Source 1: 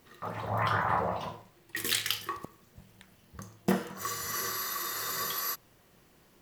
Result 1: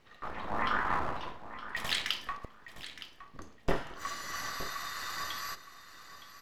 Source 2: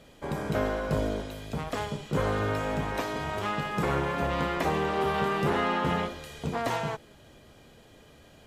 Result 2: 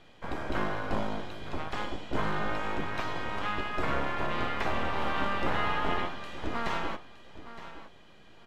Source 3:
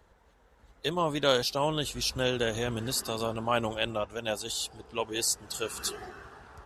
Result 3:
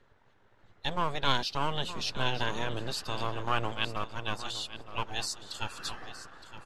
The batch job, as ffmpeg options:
-filter_complex "[0:a]acrossover=split=850|4800[s0][s1][s2];[s0]aeval=exprs='abs(val(0))':c=same[s3];[s2]aemphasis=mode=reproduction:type=75fm[s4];[s3][s1][s4]amix=inputs=3:normalize=0,aecho=1:1:916|1832:0.211|0.0338"

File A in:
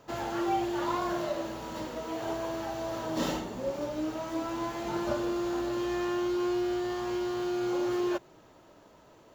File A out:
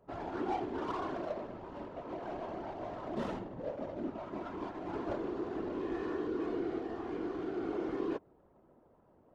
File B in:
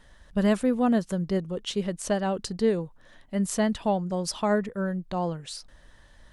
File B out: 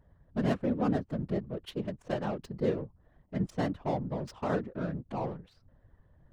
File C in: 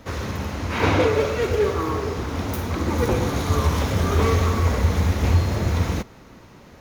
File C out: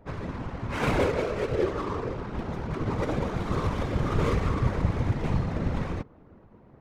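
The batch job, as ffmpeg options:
-af "adynamicsmooth=sensitivity=3.5:basefreq=880,afftfilt=real='hypot(re,im)*cos(2*PI*random(0))':imag='hypot(re,im)*sin(2*PI*random(1))':win_size=512:overlap=0.75"

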